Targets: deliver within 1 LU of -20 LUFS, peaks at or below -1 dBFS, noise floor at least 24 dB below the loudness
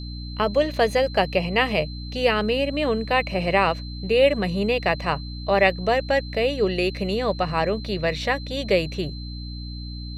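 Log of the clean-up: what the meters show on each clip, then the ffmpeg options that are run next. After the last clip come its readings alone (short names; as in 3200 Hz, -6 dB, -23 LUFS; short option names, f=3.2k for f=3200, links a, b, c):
hum 60 Hz; harmonics up to 300 Hz; hum level -31 dBFS; steady tone 4100 Hz; tone level -40 dBFS; loudness -22.5 LUFS; peak -5.0 dBFS; loudness target -20.0 LUFS
-> -af "bandreject=f=60:t=h:w=4,bandreject=f=120:t=h:w=4,bandreject=f=180:t=h:w=4,bandreject=f=240:t=h:w=4,bandreject=f=300:t=h:w=4"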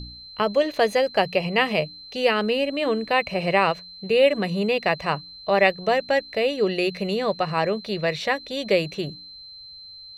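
hum none; steady tone 4100 Hz; tone level -40 dBFS
-> -af "bandreject=f=4.1k:w=30"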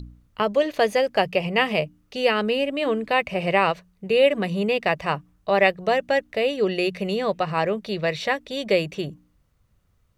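steady tone none; loudness -23.0 LUFS; peak -5.5 dBFS; loudness target -20.0 LUFS
-> -af "volume=3dB"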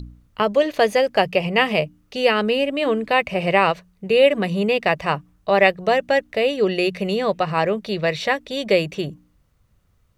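loudness -20.0 LUFS; peak -2.5 dBFS; noise floor -62 dBFS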